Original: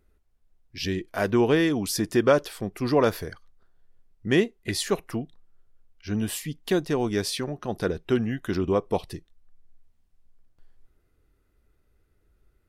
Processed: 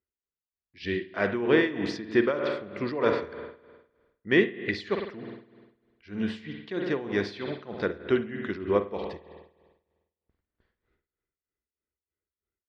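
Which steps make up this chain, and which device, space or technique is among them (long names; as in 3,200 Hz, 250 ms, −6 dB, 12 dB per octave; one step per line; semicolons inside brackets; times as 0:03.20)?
noise gate with hold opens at −49 dBFS
combo amplifier with spring reverb and tremolo (spring reverb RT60 1.3 s, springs 50 ms, chirp 20 ms, DRR 5.5 dB; amplitude tremolo 3.2 Hz, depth 77%; loudspeaker in its box 90–4,000 Hz, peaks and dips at 110 Hz −9 dB, 160 Hz −7 dB, 260 Hz −4 dB, 750 Hz −6 dB, 2,000 Hz +5 dB, 2,900 Hz −3 dB)
level +1 dB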